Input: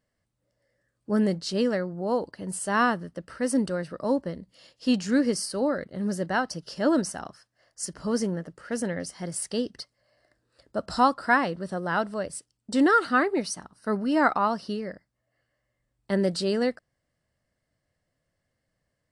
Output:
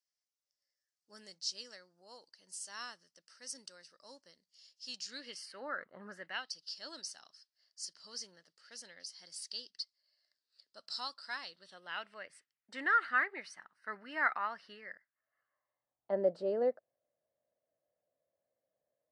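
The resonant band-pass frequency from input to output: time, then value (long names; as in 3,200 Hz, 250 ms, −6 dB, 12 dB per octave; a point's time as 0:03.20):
resonant band-pass, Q 3.2
0:04.97 5,600 Hz
0:05.98 990 Hz
0:06.55 4,600 Hz
0:11.42 4,600 Hz
0:12.35 1,900 Hz
0:14.90 1,900 Hz
0:16.28 590 Hz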